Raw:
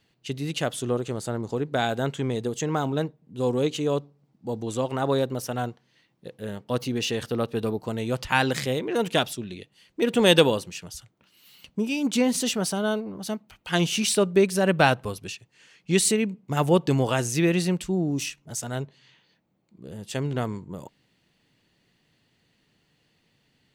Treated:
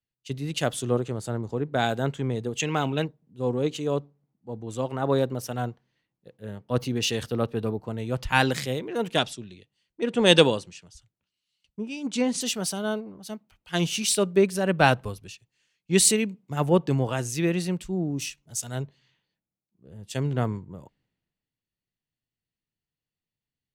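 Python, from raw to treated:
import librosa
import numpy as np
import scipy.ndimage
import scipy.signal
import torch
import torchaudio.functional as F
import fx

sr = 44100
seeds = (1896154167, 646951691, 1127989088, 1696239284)

y = fx.peak_eq(x, sr, hz=2600.0, db=14.0, octaves=0.77, at=(2.55, 3.05))
y = fx.lowpass(y, sr, hz=9100.0, slope=24, at=(9.17, 12.41))
y = fx.low_shelf(y, sr, hz=72.0, db=9.5)
y = fx.rider(y, sr, range_db=3, speed_s=2.0)
y = fx.band_widen(y, sr, depth_pct=70)
y = y * 10.0 ** (-3.0 / 20.0)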